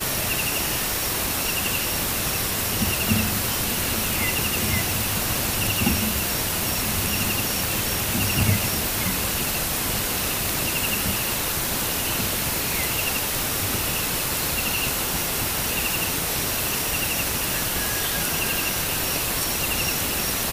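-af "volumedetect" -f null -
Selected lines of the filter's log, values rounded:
mean_volume: -24.2 dB
max_volume: -7.1 dB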